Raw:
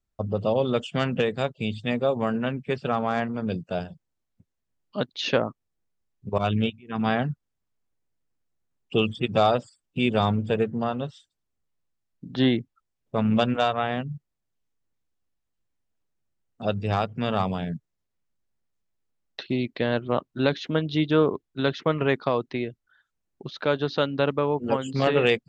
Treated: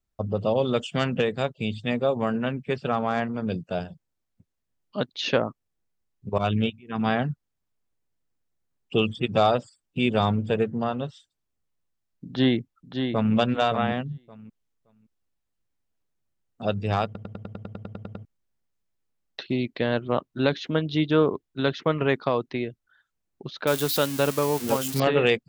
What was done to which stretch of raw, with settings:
0.57–1.10 s: treble shelf 5.7 kHz +6.5 dB
12.26–13.35 s: echo throw 570 ms, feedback 15%, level -6.5 dB
17.05 s: stutter in place 0.10 s, 12 plays
23.67–25.00 s: zero-crossing glitches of -19.5 dBFS

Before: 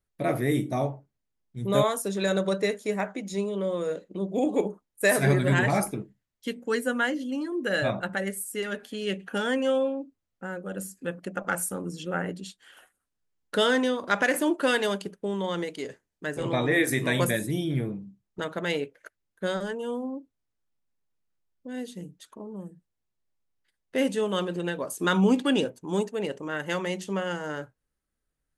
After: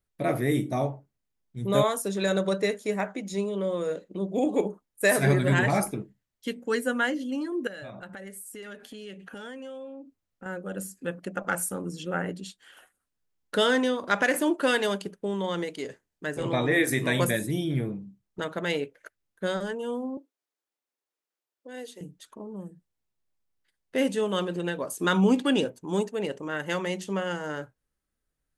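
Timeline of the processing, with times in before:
7.67–10.46 s: compression 5:1, threshold -39 dBFS
20.17–22.01 s: high-pass 330 Hz 24 dB/octave

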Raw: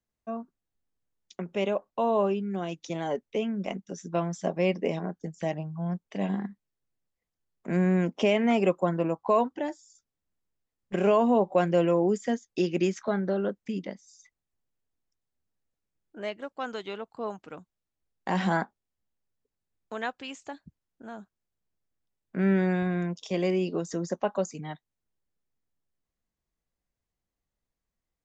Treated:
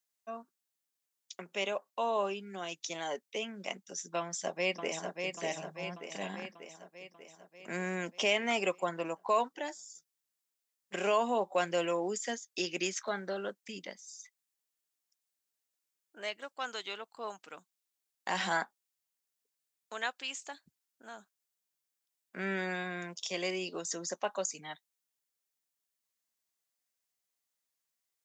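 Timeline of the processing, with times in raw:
4.19–5.31 s: echo throw 590 ms, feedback 60%, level -5 dB
whole clip: high-pass 1.2 kHz 6 dB/octave; treble shelf 4.1 kHz +10 dB

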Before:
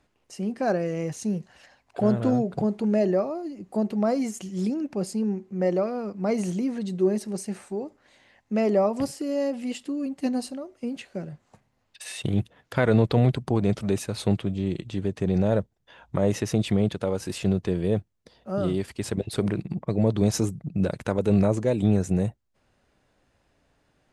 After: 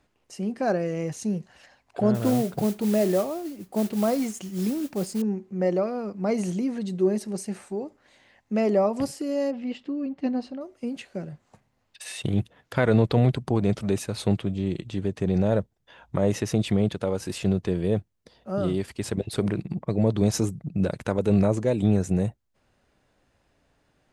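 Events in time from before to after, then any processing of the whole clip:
2.14–5.22 s: modulation noise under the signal 18 dB
9.51–10.61 s: distance through air 220 m

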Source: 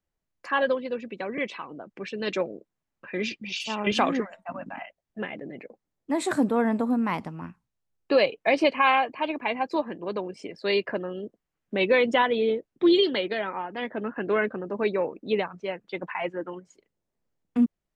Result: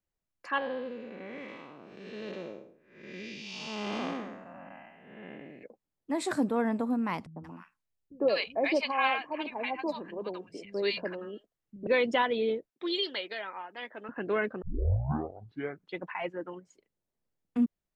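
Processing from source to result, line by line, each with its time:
0.58–5.63 s: spectral blur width 307 ms
7.26–11.87 s: three bands offset in time lows, mids, highs 100/180 ms, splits 170/990 Hz
12.70–14.09 s: high-pass 1 kHz 6 dB/octave
14.62 s: tape start 1.37 s
whole clip: dynamic bell 5 kHz, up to +6 dB, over -52 dBFS, Q 3.2; trim -5 dB

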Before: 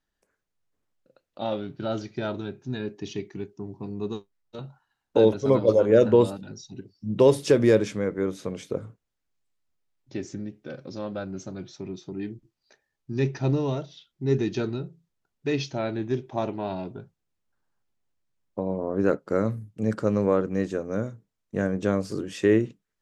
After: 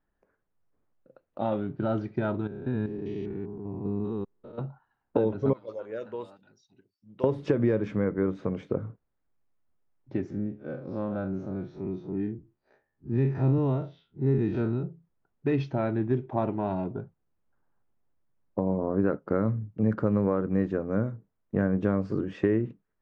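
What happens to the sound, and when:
2.47–4.58 s: spectrogram pixelated in time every 200 ms
5.53–7.24 s: pre-emphasis filter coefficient 0.97
10.30–14.83 s: spectral blur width 84 ms
whole clip: compression 12:1, threshold -21 dBFS; low-pass 1.4 kHz 12 dB/octave; dynamic bell 520 Hz, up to -5 dB, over -36 dBFS, Q 0.83; trim +4.5 dB

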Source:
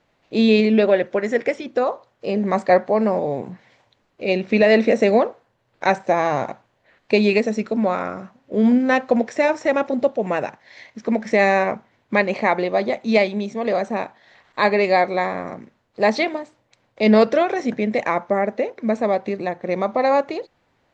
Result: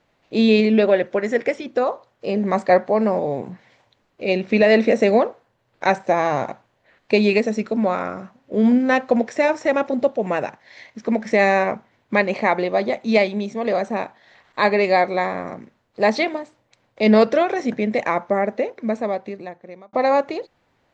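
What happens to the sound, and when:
18.63–19.93 s: fade out

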